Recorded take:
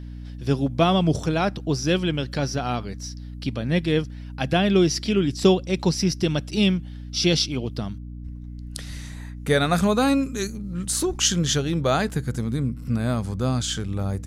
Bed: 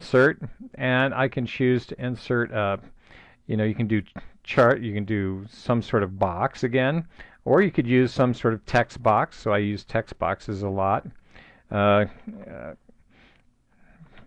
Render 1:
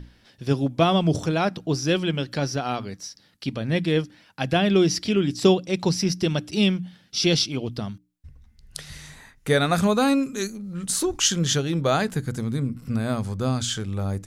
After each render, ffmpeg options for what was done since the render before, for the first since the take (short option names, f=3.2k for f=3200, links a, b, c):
-af "bandreject=f=60:t=h:w=6,bandreject=f=120:t=h:w=6,bandreject=f=180:t=h:w=6,bandreject=f=240:t=h:w=6,bandreject=f=300:t=h:w=6"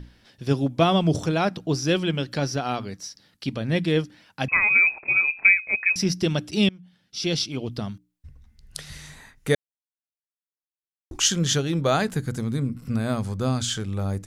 -filter_complex "[0:a]asettb=1/sr,asplit=3[a][b][c];[a]atrim=end=4.484[d];[b]atrim=start=4.48:end=5.96,asetpts=PTS-STARTPTS,afade=t=in:d=0.004:c=qsin,afade=t=out:st=1.476:d=0.004:c=qsin,lowpass=f=2.3k:t=q:w=0.5098,lowpass=f=2.3k:t=q:w=0.6013,lowpass=f=2.3k:t=q:w=0.9,lowpass=f=2.3k:t=q:w=2.563,afreqshift=-2700[e];[c]atrim=start=5.956[f];[d][e]acrossfade=d=0.004:c1=hsin:c2=qsin[g];[g][f]acrossfade=d=0.004:c1=qsin:c2=hsin,asplit=4[h][i][j][k];[h]atrim=end=6.69,asetpts=PTS-STARTPTS,afade=t=out:st=6.686:d=0.004:c=hsin:silence=0.0630957[l];[i]atrim=start=6.69:end=9.55,asetpts=PTS-STARTPTS,afade=t=in:d=1.12:silence=0.0630957,afade=t=out:st=2.856:d=0.004:c=hsin[m];[j]atrim=start=9.55:end=11.11,asetpts=PTS-STARTPTS,volume=0[n];[k]atrim=start=11.11,asetpts=PTS-STARTPTS,afade=t=in:d=0.004:c=hsin[o];[l][m][n][o]concat=n=4:v=0:a=1"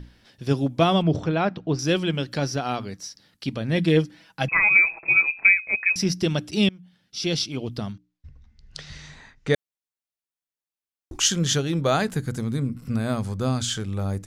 -filter_complex "[0:a]asettb=1/sr,asplit=3[a][b][c];[a]atrim=end=1.024[d];[b]atrim=start=1.02:end=1.79,asetpts=PTS-STARTPTS,afade=t=in:d=0.004:c=qsin,afade=t=out:st=0.766:d=0.004:c=qsin,lowpass=3k[e];[c]atrim=start=1.786[f];[d][e]acrossfade=d=0.004:c1=hsin:c2=qsin[g];[g][f]acrossfade=d=0.004:c1=qsin:c2=hsin,asettb=1/sr,asplit=3[h][i][j];[h]atrim=end=3.774[k];[i]atrim=start=3.77:end=5.27,asetpts=PTS-STARTPTS,afade=t=in:d=0.004:c=qsin,afade=t=out:st=1.496:d=0.004:c=qsin,aecho=1:1:6.1:0.59,atrim=end_sample=66150[l];[j]atrim=start=5.266[m];[k][l]acrossfade=d=0.004:c1=hsin:c2=qsin[n];[n][m]acrossfade=d=0.004:c1=qsin:c2=hsin,asettb=1/sr,asplit=3[o][p][q];[o]atrim=end=7.924[r];[p]atrim=start=7.92:end=9.54,asetpts=PTS-STARTPTS,afade=t=in:d=0.004:c=qsin,afade=t=out:st=1.616:d=0.004:c=qsin,lowpass=f=6.2k:w=0.5412,lowpass=f=6.2k:w=1.3066[s];[q]atrim=start=9.536[t];[r][s]acrossfade=d=0.004:c1=hsin:c2=qsin[u];[u][t]acrossfade=d=0.004:c1=qsin:c2=hsin"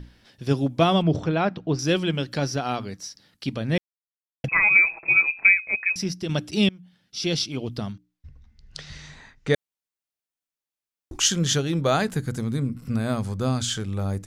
-filter_complex "[0:a]asplit=4[a][b][c][d];[a]atrim=end=3.78,asetpts=PTS-STARTPTS,afade=t=out:st=3.776:d=0.004:c=hsin[e];[b]atrim=start=3.78:end=4.44,asetpts=PTS-STARTPTS,volume=0[f];[c]atrim=start=4.44:end=6.29,asetpts=PTS-STARTPTS,afade=t=in:d=0.004:c=hsin,afade=t=out:st=1.16:d=0.69:silence=0.398107[g];[d]atrim=start=6.29,asetpts=PTS-STARTPTS,afade=t=in:d=0.004:c=hsin:silence=0.398107[h];[e][f][g][h]concat=n=4:v=0:a=1"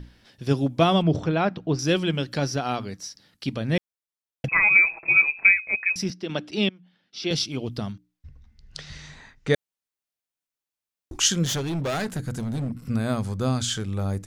-filter_complex "[0:a]asettb=1/sr,asplit=3[a][b][c];[a]atrim=end=5.004[d];[b]atrim=start=5:end=5.58,asetpts=PTS-STARTPTS,afade=t=in:d=0.004:c=qsin,afade=t=out:st=0.576:d=0.004:c=qsin,asplit=2[e][f];[f]adelay=26,volume=-12dB[g];[e][g]amix=inputs=2:normalize=0,atrim=end_sample=25578[h];[c]atrim=start=5.576[i];[d][h]acrossfade=d=0.004:c1=hsin:c2=qsin[j];[j][i]acrossfade=d=0.004:c1=qsin:c2=hsin,asettb=1/sr,asplit=3[k][l][m];[k]atrim=end=6.104[n];[l]atrim=start=6.1:end=7.31,asetpts=PTS-STARTPTS,afade=t=in:d=0.004:c=qsin,afade=t=out:st=1.206:d=0.004:c=qsin,acrossover=split=200 4800:gain=0.158 1 0.126[o][p][q];[o][p][q]amix=inputs=3:normalize=0[r];[m]atrim=start=7.306[s];[n][r]acrossfade=d=0.004:c1=hsin:c2=qsin[t];[t][s]acrossfade=d=0.004:c1=qsin:c2=hsin,asettb=1/sr,asplit=3[u][v][w];[u]atrim=end=11.454[x];[v]atrim=start=11.45:end=12.76,asetpts=PTS-STARTPTS,afade=t=in:d=0.004:c=qsin,afade=t=out:st=1.306:d=0.004:c=qsin,volume=24dB,asoftclip=hard,volume=-24dB[y];[w]atrim=start=12.756[z];[x][y]acrossfade=d=0.004:c1=hsin:c2=qsin[aa];[aa][z]acrossfade=d=0.004:c1=qsin:c2=hsin"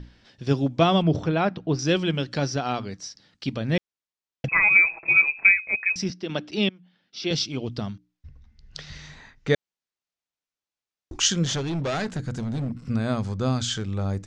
-af "lowpass=f=7k:w=0.5412,lowpass=f=7k:w=1.3066"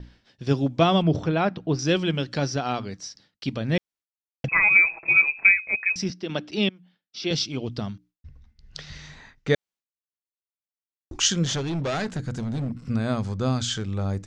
-af "agate=range=-33dB:threshold=-49dB:ratio=3:detection=peak"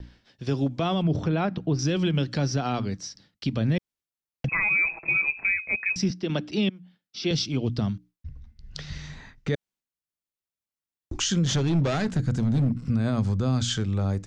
-filter_complex "[0:a]acrossover=split=280|840|3200[a][b][c][d];[a]dynaudnorm=f=440:g=5:m=6.5dB[e];[e][b][c][d]amix=inputs=4:normalize=0,alimiter=limit=-16dB:level=0:latency=1:release=74"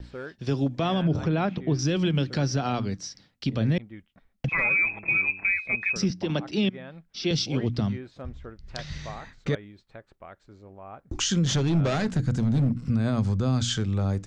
-filter_complex "[1:a]volume=-20.5dB[a];[0:a][a]amix=inputs=2:normalize=0"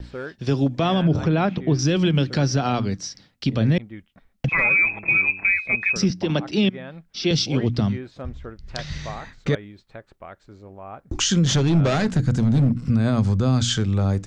-af "volume=5dB"